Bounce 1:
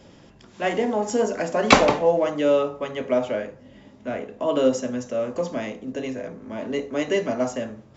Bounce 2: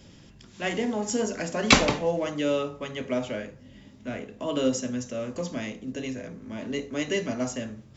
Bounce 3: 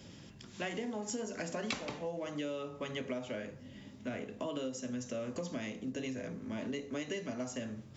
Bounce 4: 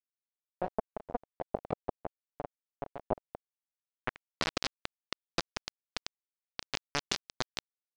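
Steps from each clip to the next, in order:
parametric band 700 Hz −11.5 dB 2.7 octaves; level +3 dB
high-pass filter 77 Hz; downward compressor 12 to 1, threshold −34 dBFS, peak gain reduction 23 dB; level −1 dB
bit reduction 5 bits; low-pass filter sweep 680 Hz → 5,000 Hz, 0:03.76–0:04.44; level +6.5 dB

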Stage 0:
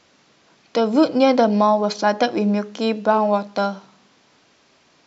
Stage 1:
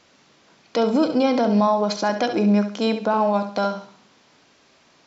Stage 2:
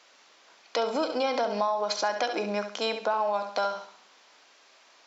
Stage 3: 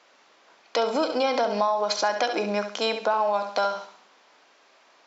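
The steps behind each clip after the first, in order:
brickwall limiter −11 dBFS, peak gain reduction 7 dB; on a send: flutter between parallel walls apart 11.7 metres, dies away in 0.43 s
high-pass filter 590 Hz 12 dB per octave; downward compressor, threshold −23 dBFS, peak gain reduction 7 dB
one half of a high-frequency compander decoder only; level +3.5 dB

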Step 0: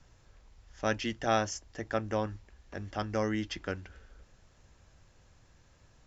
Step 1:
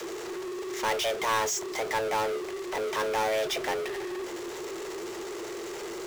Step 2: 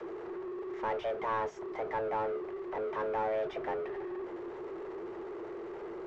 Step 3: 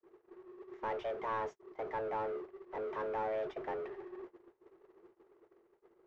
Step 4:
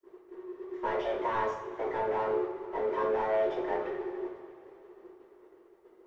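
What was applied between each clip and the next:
frequency shifter +330 Hz; power curve on the samples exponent 0.35; level −6 dB
low-pass filter 1,300 Hz 12 dB per octave; level −4 dB
noise gate −39 dBFS, range −43 dB; level −4 dB
coupled-rooms reverb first 0.48 s, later 3.2 s, from −17 dB, DRR −6.5 dB

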